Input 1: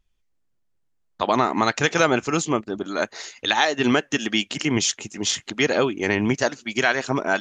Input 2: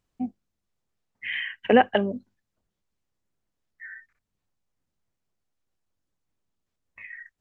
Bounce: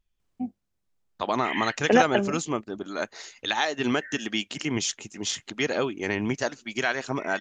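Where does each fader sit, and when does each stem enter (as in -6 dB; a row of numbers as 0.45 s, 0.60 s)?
-6.0 dB, -1.5 dB; 0.00 s, 0.20 s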